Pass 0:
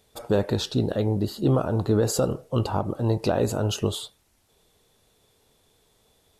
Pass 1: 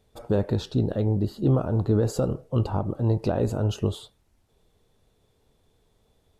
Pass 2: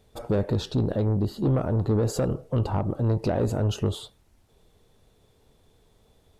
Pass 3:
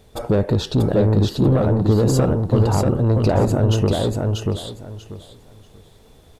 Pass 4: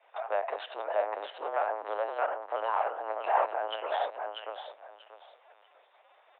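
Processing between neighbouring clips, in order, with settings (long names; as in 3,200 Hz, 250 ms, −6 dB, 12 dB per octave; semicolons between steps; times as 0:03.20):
spectral tilt −2 dB per octave; level −4.5 dB
in parallel at −3 dB: downward compressor, threshold −30 dBFS, peak gain reduction 13 dB; on the sum: soft clipping −17 dBFS, distortion −15 dB
in parallel at −2 dB: downward compressor, threshold −32 dBFS, peak gain reduction 11.5 dB; on the sum: repeating echo 638 ms, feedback 21%, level −3 dB; level +4.5 dB
linear-prediction vocoder at 8 kHz pitch kept; single-sideband voice off tune +95 Hz 590–2,800 Hz; level −2.5 dB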